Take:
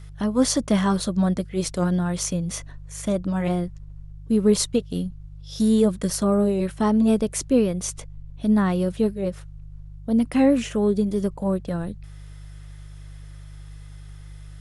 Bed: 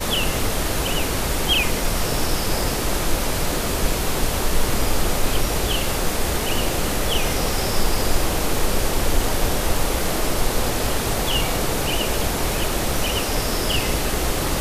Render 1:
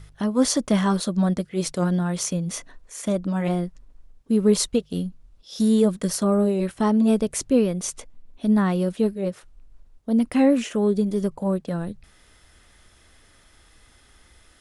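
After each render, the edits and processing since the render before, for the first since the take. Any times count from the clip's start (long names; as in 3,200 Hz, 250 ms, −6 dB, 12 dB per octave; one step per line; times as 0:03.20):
hum removal 50 Hz, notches 3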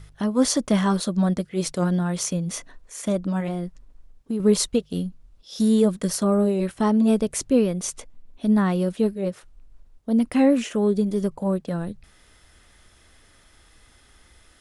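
0:03.40–0:04.40: downward compressor 3 to 1, threshold −24 dBFS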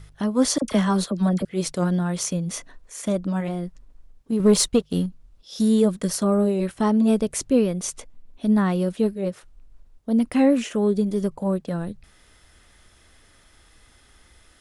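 0:00.58–0:01.45: all-pass dispersion lows, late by 41 ms, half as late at 1,100 Hz
0:04.32–0:05.06: leveller curve on the samples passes 1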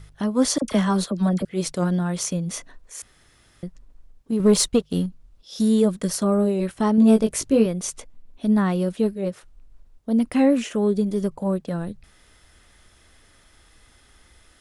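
0:03.02–0:03.63: fill with room tone
0:06.96–0:07.66: double-tracking delay 18 ms −4 dB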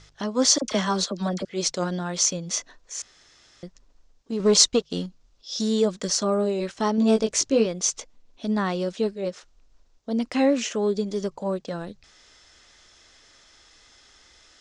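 Butterworth low-pass 6,700 Hz 36 dB per octave
bass and treble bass −10 dB, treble +11 dB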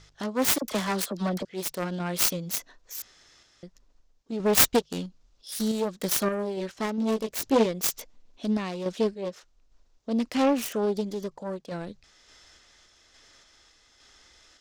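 phase distortion by the signal itself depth 0.62 ms
sample-and-hold tremolo 3.5 Hz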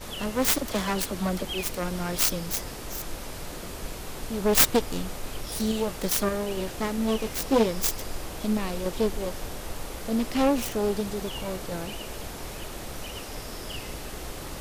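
mix in bed −15 dB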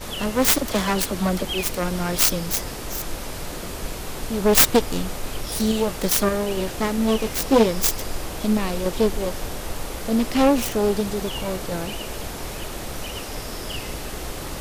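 level +5.5 dB
brickwall limiter −2 dBFS, peak gain reduction 2.5 dB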